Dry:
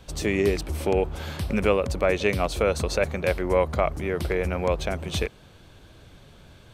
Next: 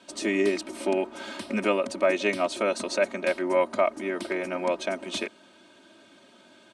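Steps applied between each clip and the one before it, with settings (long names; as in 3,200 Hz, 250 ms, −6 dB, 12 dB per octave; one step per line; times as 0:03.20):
elliptic band-pass filter 180–9,500 Hz, stop band 40 dB
comb filter 3.2 ms, depth 95%
level −3 dB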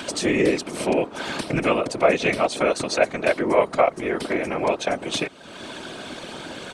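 upward compression, threshold −26 dBFS
random phases in short frames
level +4.5 dB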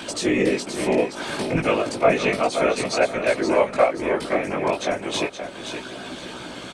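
multi-voice chorus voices 2, 0.33 Hz, delay 18 ms, depth 2.6 ms
repeating echo 523 ms, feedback 26%, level −8 dB
level +2.5 dB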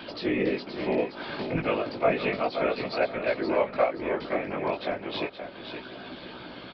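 high-frequency loss of the air 63 metres
downsampling to 11,025 Hz
level −6 dB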